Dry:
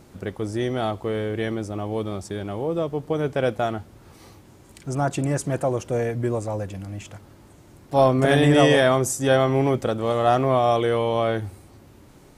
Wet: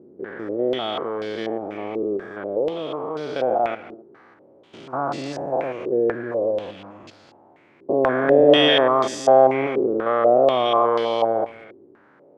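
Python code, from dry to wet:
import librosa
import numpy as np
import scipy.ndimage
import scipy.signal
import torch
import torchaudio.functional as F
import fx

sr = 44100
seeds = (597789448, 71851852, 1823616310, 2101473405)

p1 = fx.spec_steps(x, sr, hold_ms=200)
p2 = fx.quant_dither(p1, sr, seeds[0], bits=6, dither='none')
p3 = p1 + (p2 * librosa.db_to_amplitude(-12.0))
p4 = scipy.signal.sosfilt(scipy.signal.butter(2, 290.0, 'highpass', fs=sr, output='sos'), p3)
p5 = p4 + 10.0 ** (-18.0 / 20.0) * np.pad(p4, (int(270 * sr / 1000.0), 0))[:len(p4)]
p6 = fx.filter_held_lowpass(p5, sr, hz=4.1, low_hz=390.0, high_hz=4600.0)
y = p6 * librosa.db_to_amplitude(-1.0)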